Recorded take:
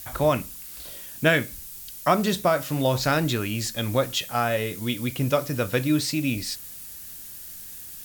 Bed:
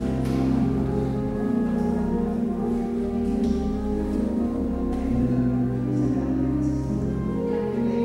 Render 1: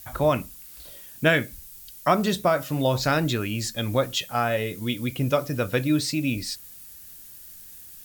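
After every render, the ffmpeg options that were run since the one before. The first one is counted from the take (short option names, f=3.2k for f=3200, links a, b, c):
-af "afftdn=nr=6:nf=-40"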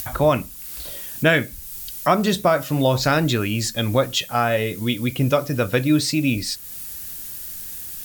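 -filter_complex "[0:a]asplit=2[a][b];[b]alimiter=limit=-14.5dB:level=0:latency=1:release=301,volume=-1.5dB[c];[a][c]amix=inputs=2:normalize=0,acompressor=mode=upward:threshold=-25dB:ratio=2.5"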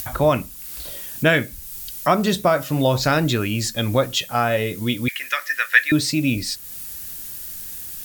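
-filter_complex "[0:a]asettb=1/sr,asplit=3[a][b][c];[a]atrim=end=5.084[d];[b]atrim=start=5.08:end=5.92,asetpts=PTS-STARTPTS,afade=t=in:d=0.004:c=qsin,afade=t=out:st=0.836:d=0.004:c=qsin,highpass=f=1.8k:t=q:w=11[e];[c]atrim=start=5.916[f];[d][e]acrossfade=d=0.004:c1=hsin:c2=qsin[g];[g][f]acrossfade=d=0.004:c1=qsin:c2=hsin"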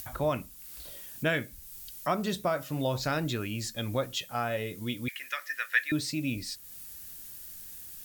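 -af "volume=-11.5dB"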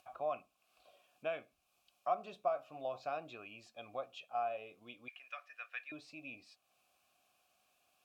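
-filter_complex "[0:a]asplit=3[a][b][c];[a]bandpass=f=730:t=q:w=8,volume=0dB[d];[b]bandpass=f=1.09k:t=q:w=8,volume=-6dB[e];[c]bandpass=f=2.44k:t=q:w=8,volume=-9dB[f];[d][e][f]amix=inputs=3:normalize=0"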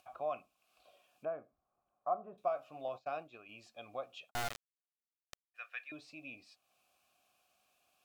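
-filter_complex "[0:a]asettb=1/sr,asplit=3[a][b][c];[a]atrim=end=1.254[d];[b]atrim=start=1.25:end=2.38,asetpts=PTS-STARTPTS,afade=t=in:d=0.004:c=qsin,afade=t=out:st=1.126:d=0.004:c=qsin,lowpass=f=1.3k:w=0.5412,lowpass=f=1.3k:w=1.3066[e];[c]atrim=start=2.376[f];[d][e]acrossfade=d=0.004:c1=hsin:c2=qsin[g];[g][f]acrossfade=d=0.004:c1=qsin:c2=hsin,asettb=1/sr,asplit=3[h][i][j];[h]atrim=end=2.884[k];[i]atrim=start=2.88:end=3.49,asetpts=PTS-STARTPTS,afade=t=in:d=0.004:c=qsin,afade=t=out:st=0.606:d=0.004:c=qsin,agate=range=-33dB:threshold=-47dB:ratio=3:release=100:detection=peak[l];[j]atrim=start=3.486[m];[k][l]acrossfade=d=0.004:c1=hsin:c2=qsin[n];[n][m]acrossfade=d=0.004:c1=qsin:c2=hsin,asplit=3[o][p][q];[o]afade=t=out:st=4.29:d=0.02[r];[p]acrusher=bits=3:dc=4:mix=0:aa=0.000001,afade=t=in:st=4.29:d=0.02,afade=t=out:st=5.54:d=0.02[s];[q]afade=t=in:st=5.54:d=0.02[t];[r][s][t]amix=inputs=3:normalize=0"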